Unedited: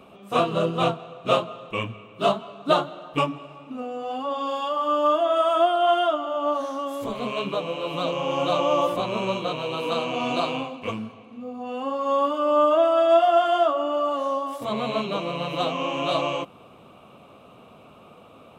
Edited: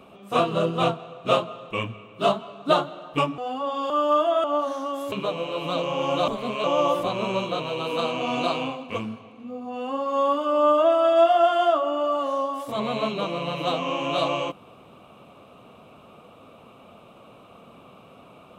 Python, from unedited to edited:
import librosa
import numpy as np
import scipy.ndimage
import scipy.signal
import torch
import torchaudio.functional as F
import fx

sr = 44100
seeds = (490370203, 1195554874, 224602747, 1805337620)

y = fx.edit(x, sr, fx.cut(start_s=3.38, length_s=0.64),
    fx.cut(start_s=4.54, length_s=0.3),
    fx.cut(start_s=5.38, length_s=0.99),
    fx.move(start_s=7.05, length_s=0.36, to_s=8.57), tone=tone)